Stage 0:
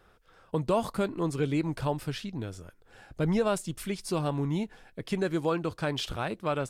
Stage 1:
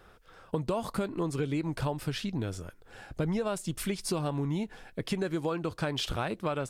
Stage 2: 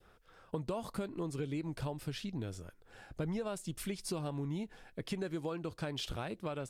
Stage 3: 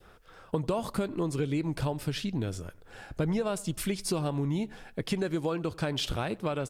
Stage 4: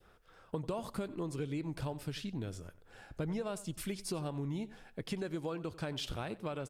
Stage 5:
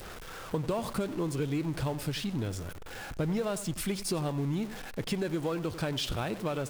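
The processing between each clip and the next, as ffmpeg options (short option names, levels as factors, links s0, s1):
-af "acompressor=threshold=0.0251:ratio=6,volume=1.68"
-af "adynamicequalizer=threshold=0.00398:dfrequency=1200:dqfactor=0.99:tfrequency=1200:tqfactor=0.99:attack=5:release=100:ratio=0.375:range=2:mode=cutabove:tftype=bell,volume=0.473"
-filter_complex "[0:a]asplit=2[s0][s1];[s1]adelay=93,lowpass=f=2200:p=1,volume=0.0794,asplit=2[s2][s3];[s3]adelay=93,lowpass=f=2200:p=1,volume=0.46,asplit=2[s4][s5];[s5]adelay=93,lowpass=f=2200:p=1,volume=0.46[s6];[s0][s2][s4][s6]amix=inputs=4:normalize=0,volume=2.51"
-af "aecho=1:1:93:0.0668,volume=0.398"
-af "aeval=exprs='val(0)+0.5*0.00631*sgn(val(0))':c=same,volume=1.78"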